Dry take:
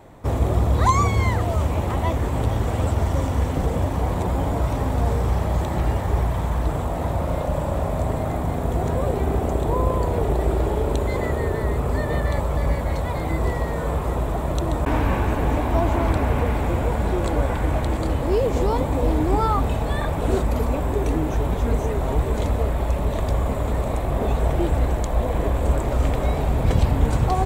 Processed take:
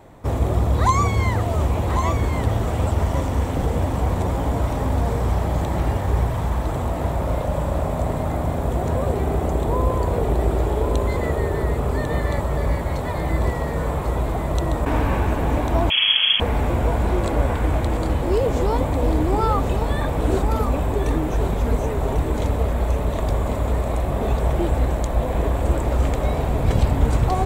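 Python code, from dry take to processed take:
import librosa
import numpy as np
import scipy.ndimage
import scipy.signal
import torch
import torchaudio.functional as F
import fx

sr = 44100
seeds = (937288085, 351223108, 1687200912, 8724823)

y = x + 10.0 ** (-7.5 / 20.0) * np.pad(x, (int(1096 * sr / 1000.0), 0))[:len(x)]
y = fx.freq_invert(y, sr, carrier_hz=3300, at=(15.9, 16.4))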